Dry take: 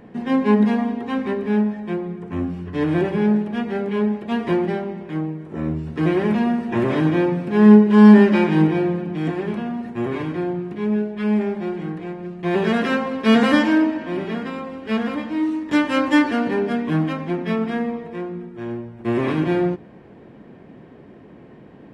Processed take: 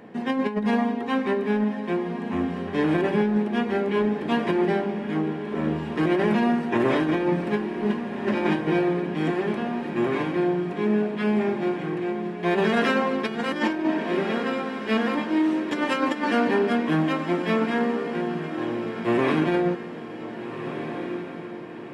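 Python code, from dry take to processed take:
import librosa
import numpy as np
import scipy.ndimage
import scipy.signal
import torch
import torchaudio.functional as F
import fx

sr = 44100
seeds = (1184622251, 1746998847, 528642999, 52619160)

p1 = fx.highpass(x, sr, hz=300.0, slope=6)
p2 = fx.over_compress(p1, sr, threshold_db=-22.0, ratio=-0.5)
y = p2 + fx.echo_diffused(p2, sr, ms=1559, feedback_pct=48, wet_db=-9.0, dry=0)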